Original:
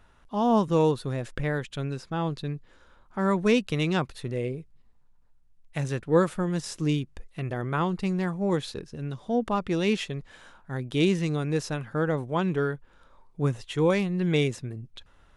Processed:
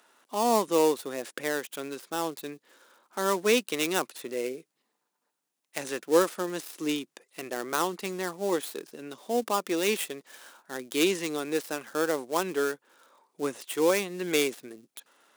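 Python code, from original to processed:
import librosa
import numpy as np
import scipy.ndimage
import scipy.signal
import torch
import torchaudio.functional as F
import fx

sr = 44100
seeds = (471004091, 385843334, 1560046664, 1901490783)

y = fx.dead_time(x, sr, dead_ms=0.097)
y = scipy.signal.sosfilt(scipy.signal.butter(4, 280.0, 'highpass', fs=sr, output='sos'), y)
y = fx.high_shelf(y, sr, hz=4800.0, db=10.5)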